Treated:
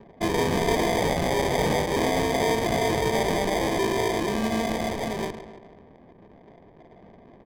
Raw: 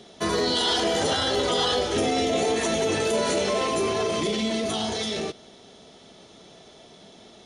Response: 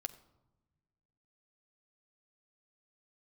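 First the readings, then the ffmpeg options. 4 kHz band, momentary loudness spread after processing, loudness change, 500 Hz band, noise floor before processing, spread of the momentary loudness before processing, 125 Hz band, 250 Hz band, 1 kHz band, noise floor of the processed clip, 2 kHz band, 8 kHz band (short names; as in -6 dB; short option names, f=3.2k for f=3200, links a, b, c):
-7.0 dB, 5 LU, -0.5 dB, 0.0 dB, -50 dBFS, 5 LU, +5.5 dB, +1.5 dB, +1.5 dB, -52 dBFS, +1.5 dB, -3.5 dB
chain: -af "aecho=1:1:139|278|417|556|695:0.282|0.144|0.0733|0.0374|0.0191,acrusher=samples=32:mix=1:aa=0.000001,adynamicsmooth=sensitivity=7.5:basefreq=800"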